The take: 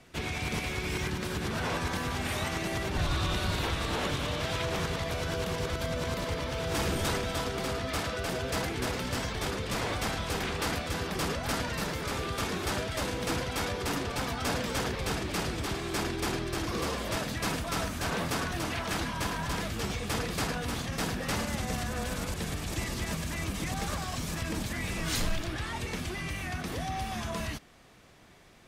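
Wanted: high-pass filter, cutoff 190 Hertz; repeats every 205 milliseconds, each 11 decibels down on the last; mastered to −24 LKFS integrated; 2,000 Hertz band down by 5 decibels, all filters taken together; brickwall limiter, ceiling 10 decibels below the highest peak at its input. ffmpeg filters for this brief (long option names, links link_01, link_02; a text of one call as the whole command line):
ffmpeg -i in.wav -af "highpass=190,equalizer=frequency=2000:width_type=o:gain=-6.5,alimiter=level_in=5dB:limit=-24dB:level=0:latency=1,volume=-5dB,aecho=1:1:205|410|615:0.282|0.0789|0.0221,volume=13.5dB" out.wav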